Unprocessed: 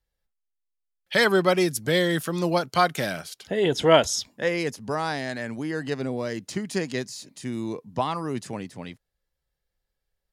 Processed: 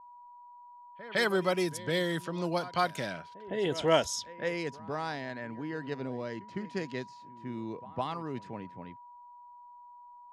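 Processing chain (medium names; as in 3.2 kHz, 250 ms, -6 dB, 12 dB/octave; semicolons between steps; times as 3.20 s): whistle 970 Hz -40 dBFS; pre-echo 158 ms -17 dB; level-controlled noise filter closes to 1 kHz, open at -18.5 dBFS; trim -8 dB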